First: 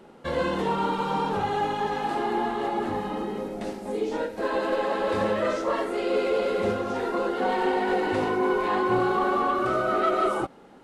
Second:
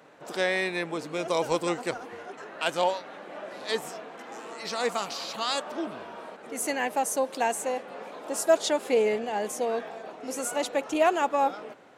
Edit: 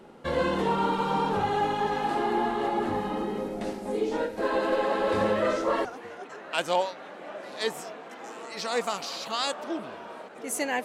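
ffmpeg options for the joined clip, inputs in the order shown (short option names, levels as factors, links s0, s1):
-filter_complex "[0:a]apad=whole_dur=10.84,atrim=end=10.84,atrim=end=5.852[s0];[1:a]atrim=start=1.928:end=6.92[s1];[s0][s1]acrossfade=d=0.004:c1=hsin:c2=hsin"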